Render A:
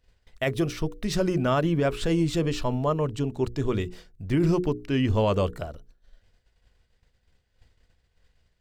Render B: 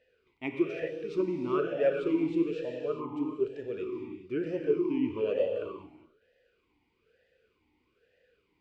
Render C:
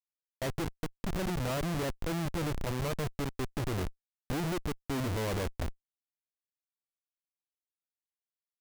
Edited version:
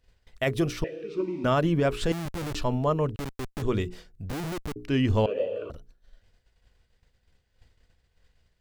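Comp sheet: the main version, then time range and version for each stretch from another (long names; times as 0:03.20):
A
0:00.84–0:01.44: punch in from B
0:02.12–0:02.55: punch in from C
0:03.16–0:03.62: punch in from C
0:04.30–0:04.76: punch in from C
0:05.26–0:05.70: punch in from B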